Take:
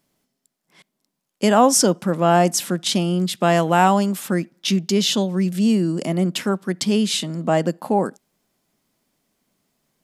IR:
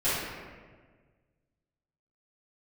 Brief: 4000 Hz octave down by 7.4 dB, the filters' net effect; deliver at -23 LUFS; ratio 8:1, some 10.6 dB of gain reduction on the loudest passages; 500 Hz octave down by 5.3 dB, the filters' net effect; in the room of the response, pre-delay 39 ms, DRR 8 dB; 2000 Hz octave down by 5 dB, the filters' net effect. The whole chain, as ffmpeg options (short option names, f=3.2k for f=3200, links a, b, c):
-filter_complex "[0:a]equalizer=f=500:t=o:g=-7,equalizer=f=2k:t=o:g=-4.5,equalizer=f=4k:t=o:g=-8.5,acompressor=threshold=-24dB:ratio=8,asplit=2[a][b];[1:a]atrim=start_sample=2205,adelay=39[c];[b][c]afir=irnorm=-1:irlink=0,volume=-20.5dB[d];[a][d]amix=inputs=2:normalize=0,volume=5dB"